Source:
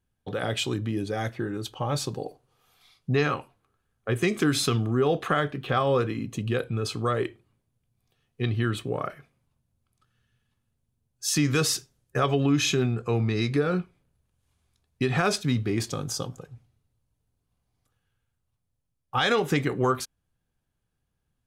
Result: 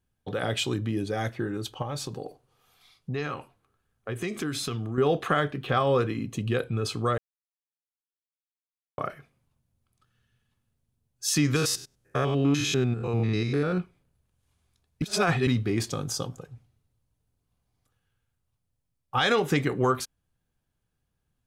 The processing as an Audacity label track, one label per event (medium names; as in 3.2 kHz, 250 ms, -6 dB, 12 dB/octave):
1.820000	4.980000	compression 2:1, threshold -33 dBFS
7.180000	8.980000	mute
11.560000	13.780000	spectrogram pixelated in time every 100 ms
15.020000	15.470000	reverse